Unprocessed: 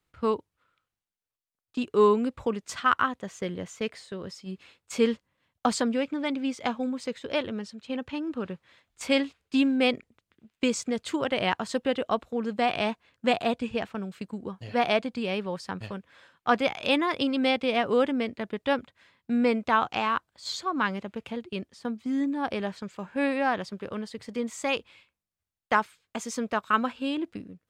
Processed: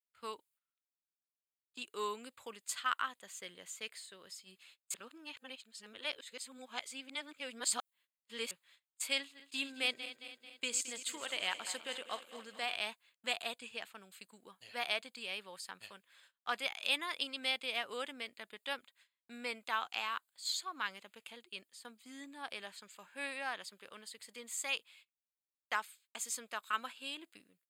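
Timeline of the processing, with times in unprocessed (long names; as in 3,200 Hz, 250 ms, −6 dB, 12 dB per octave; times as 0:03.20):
0:04.94–0:08.51: reverse
0:09.18–0:12.75: feedback delay that plays each chunk backwards 110 ms, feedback 74%, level −12 dB
whole clip: parametric band 5,700 Hz −15 dB 0.22 octaves; noise gate −55 dBFS, range −19 dB; first difference; level +3 dB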